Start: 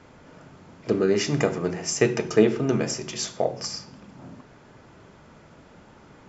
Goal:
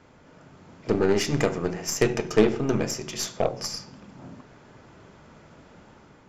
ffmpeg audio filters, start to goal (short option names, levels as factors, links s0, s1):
-af "dynaudnorm=f=370:g=3:m=1.58,aeval=exprs='0.75*(cos(1*acos(clip(val(0)/0.75,-1,1)))-cos(1*PI/2))+0.0841*(cos(4*acos(clip(val(0)/0.75,-1,1)))-cos(4*PI/2))+0.133*(cos(6*acos(clip(val(0)/0.75,-1,1)))-cos(6*PI/2))+0.119*(cos(8*acos(clip(val(0)/0.75,-1,1)))-cos(8*PI/2))':c=same,volume=0.631"